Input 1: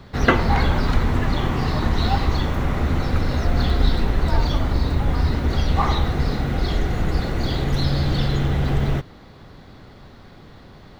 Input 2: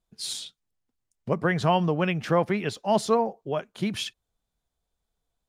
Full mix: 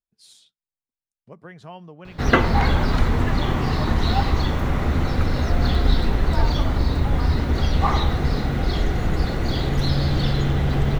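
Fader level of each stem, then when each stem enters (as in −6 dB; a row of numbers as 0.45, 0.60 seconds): 0.0, −17.5 decibels; 2.05, 0.00 seconds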